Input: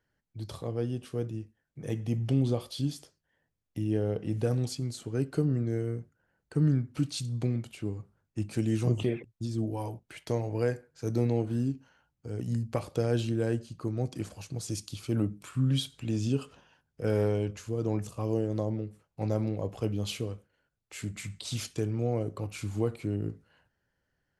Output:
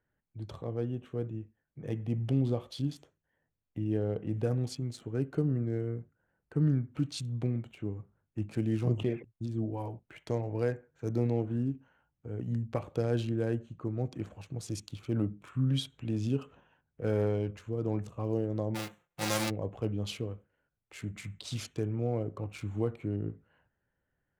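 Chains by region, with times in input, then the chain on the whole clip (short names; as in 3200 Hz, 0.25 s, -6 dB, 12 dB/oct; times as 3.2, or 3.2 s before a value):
18.74–19.49 spectral whitening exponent 0.3 + comb 5.7 ms, depth 58%
whole clip: Wiener smoothing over 9 samples; high shelf 8500 Hz -5 dB; gain -2 dB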